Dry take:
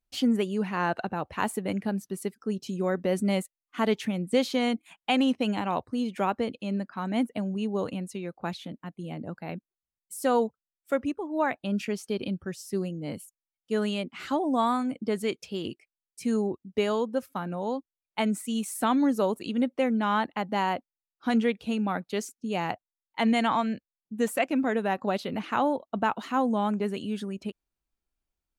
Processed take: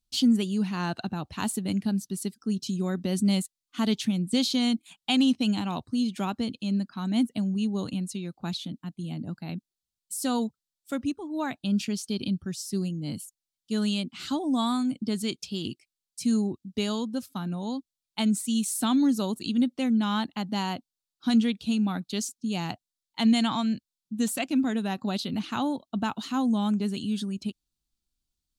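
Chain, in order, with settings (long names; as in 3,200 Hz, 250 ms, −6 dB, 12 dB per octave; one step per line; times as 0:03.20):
octave-band graphic EQ 125/250/500/1,000/2,000/4,000/8,000 Hz +3/+3/−12/−4/−9/+8/+4 dB
level +2 dB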